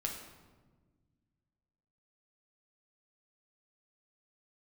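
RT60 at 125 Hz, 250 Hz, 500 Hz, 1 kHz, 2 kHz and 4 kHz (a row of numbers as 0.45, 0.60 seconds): 2.6, 2.3, 1.6, 1.2, 1.0, 0.85 seconds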